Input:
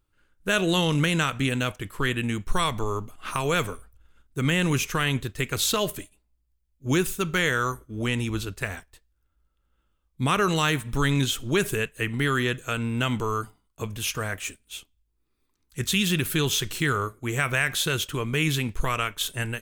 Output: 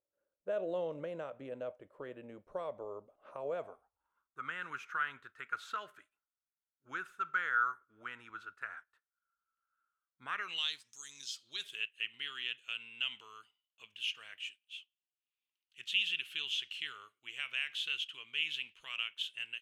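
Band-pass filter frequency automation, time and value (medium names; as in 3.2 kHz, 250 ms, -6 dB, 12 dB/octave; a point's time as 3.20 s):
band-pass filter, Q 8
3.47 s 570 Hz
4.53 s 1.4 kHz
10.24 s 1.4 kHz
10.99 s 7.1 kHz
11.82 s 2.9 kHz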